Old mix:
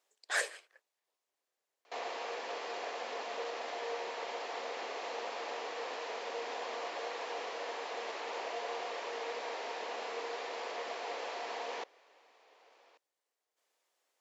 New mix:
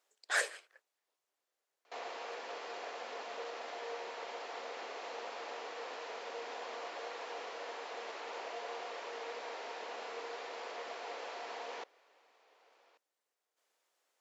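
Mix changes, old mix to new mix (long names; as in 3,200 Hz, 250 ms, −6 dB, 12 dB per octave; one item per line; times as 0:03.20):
background −4.0 dB
master: add parametric band 1,400 Hz +4 dB 0.23 octaves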